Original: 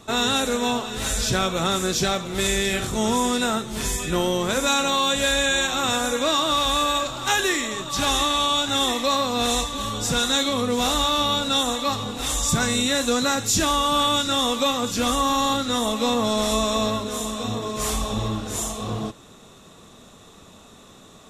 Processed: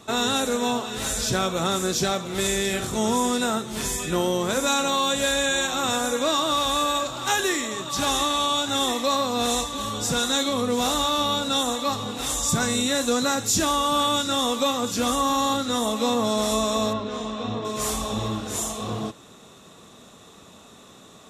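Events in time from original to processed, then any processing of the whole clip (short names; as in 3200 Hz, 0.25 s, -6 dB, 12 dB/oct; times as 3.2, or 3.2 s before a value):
16.93–17.65 air absorption 170 m
whole clip: HPF 110 Hz 6 dB/oct; dynamic EQ 2500 Hz, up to -4 dB, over -33 dBFS, Q 0.84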